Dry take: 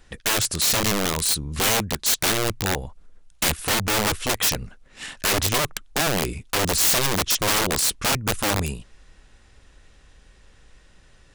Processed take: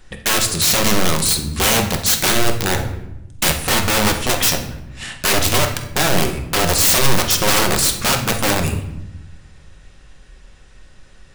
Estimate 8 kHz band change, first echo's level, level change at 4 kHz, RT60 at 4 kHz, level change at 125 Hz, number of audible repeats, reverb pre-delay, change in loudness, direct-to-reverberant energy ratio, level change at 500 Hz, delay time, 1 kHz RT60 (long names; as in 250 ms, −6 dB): +5.0 dB, no echo audible, +5.0 dB, 0.60 s, +7.0 dB, no echo audible, 5 ms, +5.5 dB, 3.5 dB, +6.0 dB, no echo audible, 0.85 s